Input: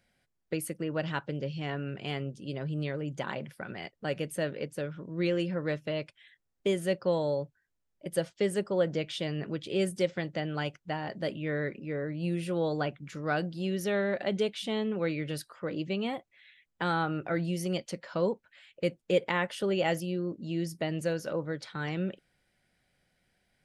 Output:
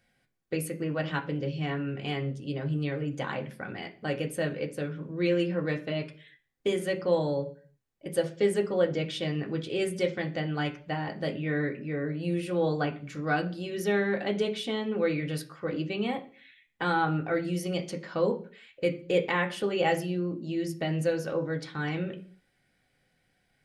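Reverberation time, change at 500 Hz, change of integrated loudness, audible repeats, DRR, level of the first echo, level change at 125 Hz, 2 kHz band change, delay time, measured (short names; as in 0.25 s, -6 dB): 0.45 s, +2.0 dB, +2.0 dB, none, 1.5 dB, none, +2.5 dB, +3.0 dB, none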